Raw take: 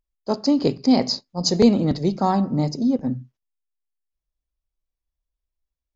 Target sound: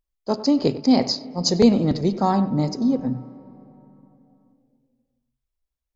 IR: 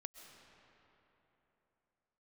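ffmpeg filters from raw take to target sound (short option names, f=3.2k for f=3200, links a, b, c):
-filter_complex "[0:a]asplit=2[a][b];[1:a]atrim=start_sample=2205,lowpass=3k,adelay=97[c];[b][c]afir=irnorm=-1:irlink=0,volume=-8.5dB[d];[a][d]amix=inputs=2:normalize=0"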